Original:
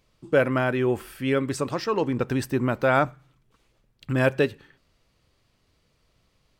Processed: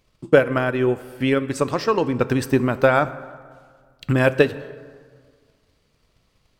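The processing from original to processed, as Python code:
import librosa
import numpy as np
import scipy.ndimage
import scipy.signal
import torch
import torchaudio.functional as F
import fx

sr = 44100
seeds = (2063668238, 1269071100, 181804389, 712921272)

y = fx.transient(x, sr, attack_db=8, sustain_db=fx.steps((0.0, -7.0), (1.55, 3.0)))
y = fx.rev_plate(y, sr, seeds[0], rt60_s=1.8, hf_ratio=0.55, predelay_ms=0, drr_db=14.0)
y = F.gain(torch.from_numpy(y), 1.0).numpy()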